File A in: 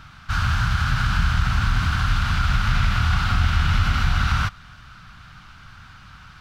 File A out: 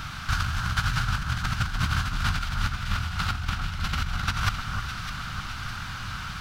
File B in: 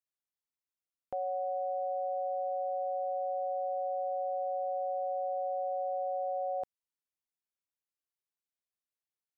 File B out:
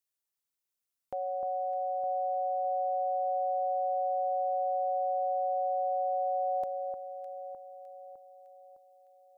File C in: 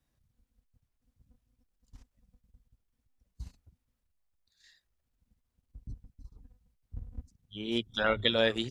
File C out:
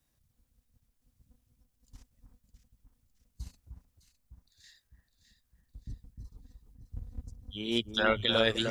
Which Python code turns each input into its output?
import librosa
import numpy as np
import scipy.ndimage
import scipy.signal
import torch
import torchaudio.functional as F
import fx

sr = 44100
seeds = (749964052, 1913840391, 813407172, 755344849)

p1 = fx.high_shelf(x, sr, hz=4700.0, db=8.5)
p2 = fx.over_compress(p1, sr, threshold_db=-25.0, ratio=-0.5)
y = p2 + fx.echo_alternate(p2, sr, ms=304, hz=1500.0, feedback_pct=70, wet_db=-6, dry=0)